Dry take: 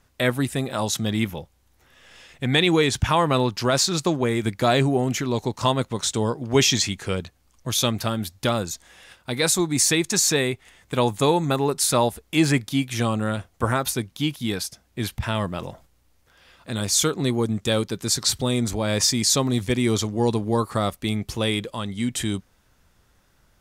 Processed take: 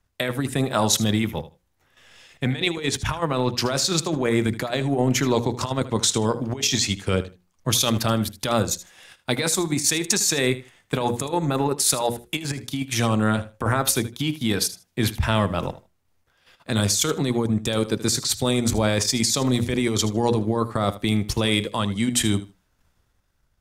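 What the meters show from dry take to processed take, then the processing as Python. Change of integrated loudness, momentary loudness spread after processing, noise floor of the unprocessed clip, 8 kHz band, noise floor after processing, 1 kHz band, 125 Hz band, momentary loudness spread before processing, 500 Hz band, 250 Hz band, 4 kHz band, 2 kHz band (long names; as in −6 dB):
0.0 dB, 7 LU, −63 dBFS, +0.5 dB, −68 dBFS, −1.0 dB, +0.5 dB, 10 LU, −1.0 dB, +0.5 dB, 0.0 dB, −0.5 dB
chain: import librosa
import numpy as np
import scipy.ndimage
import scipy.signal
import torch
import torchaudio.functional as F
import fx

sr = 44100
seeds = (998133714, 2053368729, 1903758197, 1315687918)

p1 = fx.hum_notches(x, sr, base_hz=60, count=9)
p2 = fx.level_steps(p1, sr, step_db=18)
p3 = p1 + F.gain(torch.from_numpy(p2), 1.0).numpy()
p4 = fx.transient(p3, sr, attack_db=2, sustain_db=-7)
p5 = fx.over_compress(p4, sr, threshold_db=-22.0, ratio=-1.0)
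p6 = p5 + fx.echo_feedback(p5, sr, ms=78, feedback_pct=19, wet_db=-15, dry=0)
y = fx.band_widen(p6, sr, depth_pct=40)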